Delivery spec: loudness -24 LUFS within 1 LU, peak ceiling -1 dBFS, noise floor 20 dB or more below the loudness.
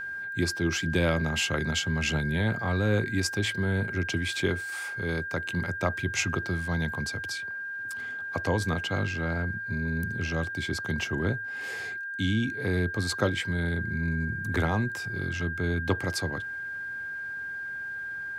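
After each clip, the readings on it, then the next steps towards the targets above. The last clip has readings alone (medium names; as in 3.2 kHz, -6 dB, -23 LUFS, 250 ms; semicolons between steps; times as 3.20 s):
steady tone 1.6 kHz; tone level -33 dBFS; loudness -29.5 LUFS; peak level -11.5 dBFS; loudness target -24.0 LUFS
-> band-stop 1.6 kHz, Q 30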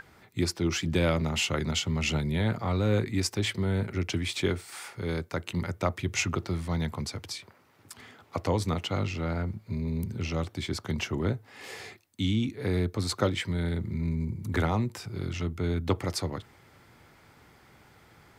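steady tone not found; loudness -30.0 LUFS; peak level -11.0 dBFS; loudness target -24.0 LUFS
-> trim +6 dB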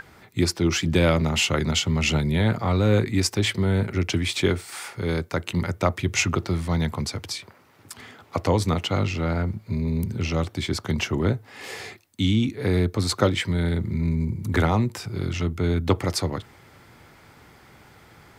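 loudness -24.0 LUFS; peak level -5.0 dBFS; noise floor -53 dBFS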